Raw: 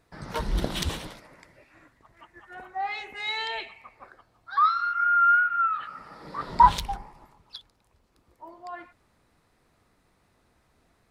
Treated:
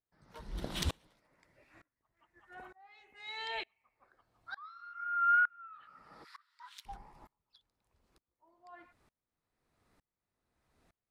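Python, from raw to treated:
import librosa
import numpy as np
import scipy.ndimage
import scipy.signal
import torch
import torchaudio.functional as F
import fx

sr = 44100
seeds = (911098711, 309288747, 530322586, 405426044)

y = fx.steep_highpass(x, sr, hz=1300.0, slope=36, at=(6.23, 6.85), fade=0.02)
y = fx.tremolo_decay(y, sr, direction='swelling', hz=1.1, depth_db=30)
y = y * librosa.db_to_amplitude(-3.0)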